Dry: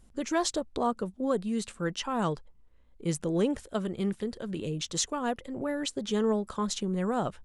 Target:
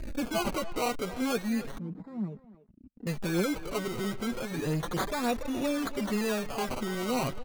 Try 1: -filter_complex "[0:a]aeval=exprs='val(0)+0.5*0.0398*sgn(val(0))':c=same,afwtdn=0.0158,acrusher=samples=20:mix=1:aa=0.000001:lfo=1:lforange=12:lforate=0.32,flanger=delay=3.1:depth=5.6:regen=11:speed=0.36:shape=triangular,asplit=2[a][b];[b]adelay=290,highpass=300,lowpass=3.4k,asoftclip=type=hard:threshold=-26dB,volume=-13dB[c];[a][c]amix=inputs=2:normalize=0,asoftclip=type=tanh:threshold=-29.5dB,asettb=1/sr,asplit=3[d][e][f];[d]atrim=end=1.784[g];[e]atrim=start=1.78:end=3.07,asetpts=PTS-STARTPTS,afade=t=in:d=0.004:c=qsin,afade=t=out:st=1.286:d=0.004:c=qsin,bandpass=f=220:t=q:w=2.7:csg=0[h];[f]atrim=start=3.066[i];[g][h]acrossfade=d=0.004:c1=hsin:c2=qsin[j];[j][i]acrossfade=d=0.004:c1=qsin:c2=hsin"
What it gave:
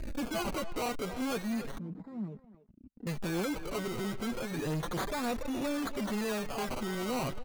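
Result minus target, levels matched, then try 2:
soft clip: distortion +13 dB
-filter_complex "[0:a]aeval=exprs='val(0)+0.5*0.0398*sgn(val(0))':c=same,afwtdn=0.0158,acrusher=samples=20:mix=1:aa=0.000001:lfo=1:lforange=12:lforate=0.32,flanger=delay=3.1:depth=5.6:regen=11:speed=0.36:shape=triangular,asplit=2[a][b];[b]adelay=290,highpass=300,lowpass=3.4k,asoftclip=type=hard:threshold=-26dB,volume=-13dB[c];[a][c]amix=inputs=2:normalize=0,asoftclip=type=tanh:threshold=-19dB,asettb=1/sr,asplit=3[d][e][f];[d]atrim=end=1.784[g];[e]atrim=start=1.78:end=3.07,asetpts=PTS-STARTPTS,afade=t=in:d=0.004:c=qsin,afade=t=out:st=1.286:d=0.004:c=qsin,bandpass=f=220:t=q:w=2.7:csg=0[h];[f]atrim=start=3.066[i];[g][h]acrossfade=d=0.004:c1=hsin:c2=qsin[j];[j][i]acrossfade=d=0.004:c1=qsin:c2=hsin"

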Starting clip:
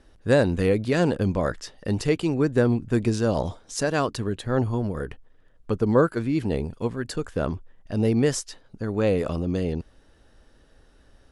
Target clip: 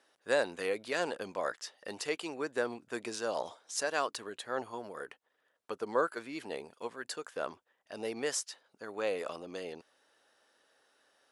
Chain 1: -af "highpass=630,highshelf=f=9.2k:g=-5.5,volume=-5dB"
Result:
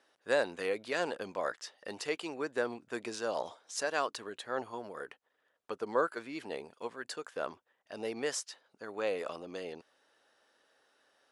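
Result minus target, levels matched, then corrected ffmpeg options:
8000 Hz band -2.5 dB
-af "highpass=630,highshelf=f=9.2k:g=2.5,volume=-5dB"

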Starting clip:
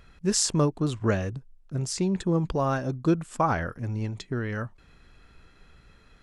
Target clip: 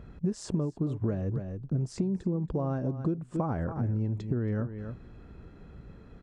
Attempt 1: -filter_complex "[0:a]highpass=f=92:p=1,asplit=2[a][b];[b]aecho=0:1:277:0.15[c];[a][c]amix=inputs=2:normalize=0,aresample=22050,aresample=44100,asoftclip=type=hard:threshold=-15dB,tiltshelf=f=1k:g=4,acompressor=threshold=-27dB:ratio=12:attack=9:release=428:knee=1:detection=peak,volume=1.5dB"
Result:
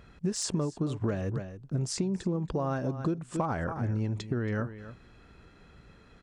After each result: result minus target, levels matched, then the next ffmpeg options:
hard clip: distortion +24 dB; 1000 Hz band +4.5 dB
-filter_complex "[0:a]highpass=f=92:p=1,asplit=2[a][b];[b]aecho=0:1:277:0.15[c];[a][c]amix=inputs=2:normalize=0,aresample=22050,aresample=44100,asoftclip=type=hard:threshold=-7dB,tiltshelf=f=1k:g=4,acompressor=threshold=-27dB:ratio=12:attack=9:release=428:knee=1:detection=peak,volume=1.5dB"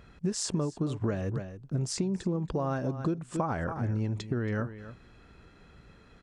1000 Hz band +4.5 dB
-filter_complex "[0:a]highpass=f=92:p=1,asplit=2[a][b];[b]aecho=0:1:277:0.15[c];[a][c]amix=inputs=2:normalize=0,aresample=22050,aresample=44100,asoftclip=type=hard:threshold=-7dB,tiltshelf=f=1k:g=12,acompressor=threshold=-27dB:ratio=12:attack=9:release=428:knee=1:detection=peak,volume=1.5dB"

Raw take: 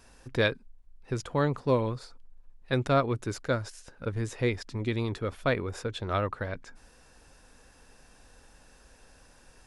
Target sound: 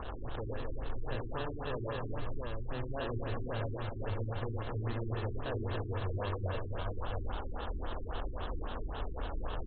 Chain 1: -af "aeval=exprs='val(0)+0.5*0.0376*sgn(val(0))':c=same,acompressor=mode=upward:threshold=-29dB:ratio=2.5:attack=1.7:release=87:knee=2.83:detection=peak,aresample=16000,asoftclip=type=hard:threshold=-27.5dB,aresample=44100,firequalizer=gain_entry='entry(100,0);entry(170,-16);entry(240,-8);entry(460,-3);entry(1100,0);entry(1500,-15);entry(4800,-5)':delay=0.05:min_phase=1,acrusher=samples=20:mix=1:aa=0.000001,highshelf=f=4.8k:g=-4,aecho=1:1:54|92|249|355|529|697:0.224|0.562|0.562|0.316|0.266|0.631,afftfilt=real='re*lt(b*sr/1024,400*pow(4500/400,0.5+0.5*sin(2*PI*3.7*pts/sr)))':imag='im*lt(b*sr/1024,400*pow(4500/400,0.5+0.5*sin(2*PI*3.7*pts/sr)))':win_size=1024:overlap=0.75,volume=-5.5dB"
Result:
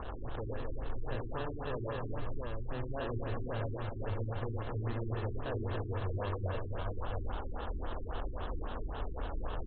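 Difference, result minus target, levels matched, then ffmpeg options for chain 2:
4000 Hz band -3.5 dB
-af "aeval=exprs='val(0)+0.5*0.0376*sgn(val(0))':c=same,acompressor=mode=upward:threshold=-29dB:ratio=2.5:attack=1.7:release=87:knee=2.83:detection=peak,aresample=16000,asoftclip=type=hard:threshold=-27.5dB,aresample=44100,firequalizer=gain_entry='entry(100,0);entry(170,-16);entry(240,-8);entry(460,-3);entry(1100,0);entry(1500,-15);entry(4800,-5)':delay=0.05:min_phase=1,acrusher=samples=20:mix=1:aa=0.000001,highshelf=f=4.8k:g=7.5,aecho=1:1:54|92|249|355|529|697:0.224|0.562|0.562|0.316|0.266|0.631,afftfilt=real='re*lt(b*sr/1024,400*pow(4500/400,0.5+0.5*sin(2*PI*3.7*pts/sr)))':imag='im*lt(b*sr/1024,400*pow(4500/400,0.5+0.5*sin(2*PI*3.7*pts/sr)))':win_size=1024:overlap=0.75,volume=-5.5dB"

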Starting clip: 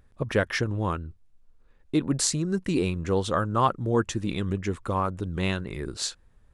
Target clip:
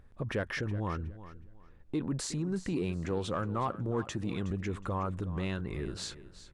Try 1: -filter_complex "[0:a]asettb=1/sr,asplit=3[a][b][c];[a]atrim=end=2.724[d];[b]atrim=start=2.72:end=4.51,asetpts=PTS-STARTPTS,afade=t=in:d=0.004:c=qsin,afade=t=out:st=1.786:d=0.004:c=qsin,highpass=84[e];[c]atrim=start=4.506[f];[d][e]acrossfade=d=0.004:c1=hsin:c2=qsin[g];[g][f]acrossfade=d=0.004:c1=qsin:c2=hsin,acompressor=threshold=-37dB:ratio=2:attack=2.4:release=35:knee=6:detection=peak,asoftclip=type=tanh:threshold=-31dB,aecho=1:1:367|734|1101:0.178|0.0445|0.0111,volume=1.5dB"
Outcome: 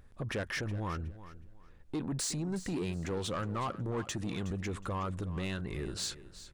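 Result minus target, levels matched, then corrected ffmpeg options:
soft clip: distortion +13 dB; 8000 Hz band +5.5 dB
-filter_complex "[0:a]asettb=1/sr,asplit=3[a][b][c];[a]atrim=end=2.724[d];[b]atrim=start=2.72:end=4.51,asetpts=PTS-STARTPTS,afade=t=in:d=0.004:c=qsin,afade=t=out:st=1.786:d=0.004:c=qsin,highpass=84[e];[c]atrim=start=4.506[f];[d][e]acrossfade=d=0.004:c1=hsin:c2=qsin[g];[g][f]acrossfade=d=0.004:c1=qsin:c2=hsin,acompressor=threshold=-37dB:ratio=2:attack=2.4:release=35:knee=6:detection=peak,highshelf=f=3.6k:g=-8.5,asoftclip=type=tanh:threshold=-22dB,aecho=1:1:367|734|1101:0.178|0.0445|0.0111,volume=1.5dB"

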